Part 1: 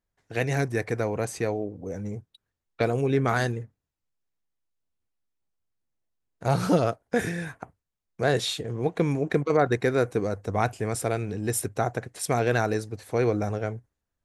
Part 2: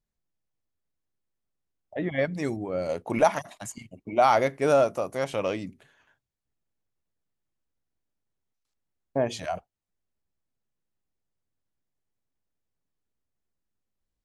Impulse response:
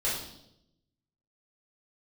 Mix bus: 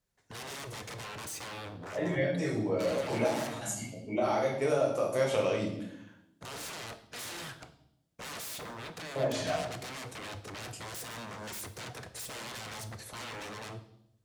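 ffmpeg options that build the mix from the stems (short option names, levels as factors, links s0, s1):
-filter_complex "[0:a]alimiter=limit=0.1:level=0:latency=1:release=36,aeval=exprs='0.0141*(abs(mod(val(0)/0.0141+3,4)-2)-1)':c=same,volume=0.794,asplit=3[s0][s1][s2];[s1]volume=0.168[s3];[1:a]acompressor=threshold=0.0355:ratio=8,volume=0.75,asplit=2[s4][s5];[s5]volume=0.631[s6];[s2]apad=whole_len=628286[s7];[s4][s7]sidechaincompress=threshold=0.00112:ratio=8:attack=16:release=995[s8];[2:a]atrim=start_sample=2205[s9];[s3][s6]amix=inputs=2:normalize=0[s10];[s10][s9]afir=irnorm=-1:irlink=0[s11];[s0][s8][s11]amix=inputs=3:normalize=0,highpass=62,equalizer=f=8000:t=o:w=1.7:g=3.5"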